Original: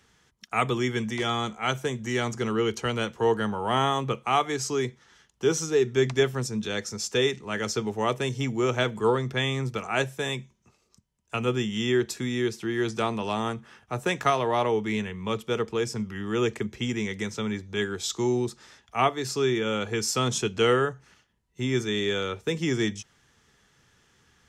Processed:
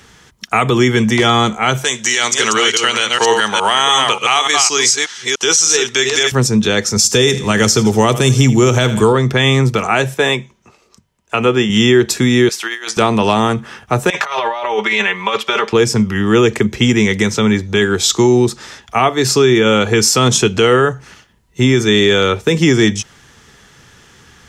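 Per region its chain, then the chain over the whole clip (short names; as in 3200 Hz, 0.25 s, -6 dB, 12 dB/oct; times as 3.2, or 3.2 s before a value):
1.84–6.32 reverse delay 0.293 s, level -6 dB + weighting filter ITU-R 468
6.96–9.13 tone controls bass +6 dB, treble +10 dB + feedback echo 82 ms, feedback 44%, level -18 dB
10.14–11.7 tone controls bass -8 dB, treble -7 dB + notches 50/100/150 Hz
12.49–12.97 HPF 1000 Hz + negative-ratio compressor -40 dBFS, ratio -0.5
14.1–15.73 three-band isolator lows -24 dB, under 580 Hz, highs -14 dB, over 5500 Hz + comb 5.1 ms, depth 87% + negative-ratio compressor -35 dBFS
whole clip: compressor 2:1, threshold -26 dBFS; maximiser +19 dB; gain -1 dB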